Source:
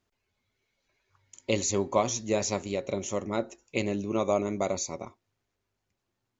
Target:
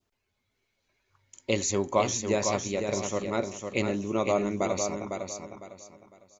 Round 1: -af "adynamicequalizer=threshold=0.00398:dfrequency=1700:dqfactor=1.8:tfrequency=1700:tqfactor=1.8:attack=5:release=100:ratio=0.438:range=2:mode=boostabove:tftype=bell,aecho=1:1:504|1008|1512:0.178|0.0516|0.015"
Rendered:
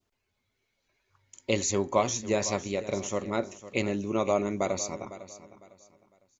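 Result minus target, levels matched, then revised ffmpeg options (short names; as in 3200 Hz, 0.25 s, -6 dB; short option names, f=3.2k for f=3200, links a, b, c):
echo-to-direct -9 dB
-af "adynamicequalizer=threshold=0.00398:dfrequency=1700:dqfactor=1.8:tfrequency=1700:tqfactor=1.8:attack=5:release=100:ratio=0.438:range=2:mode=boostabove:tftype=bell,aecho=1:1:504|1008|1512|2016:0.501|0.145|0.0421|0.0122"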